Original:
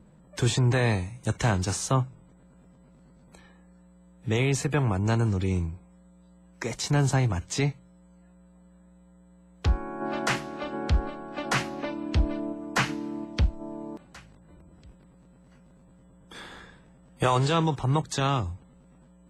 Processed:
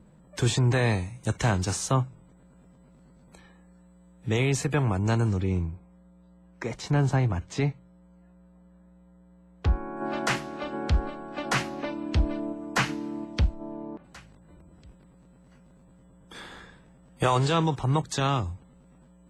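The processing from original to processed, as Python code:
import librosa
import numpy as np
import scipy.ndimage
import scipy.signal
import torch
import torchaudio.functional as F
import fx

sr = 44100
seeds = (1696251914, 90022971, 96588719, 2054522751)

y = fx.lowpass(x, sr, hz=2200.0, slope=6, at=(5.4, 9.97))
y = fx.lowpass(y, sr, hz=fx.line((13.53, 5100.0), (14.03, 2100.0)), slope=12, at=(13.53, 14.03), fade=0.02)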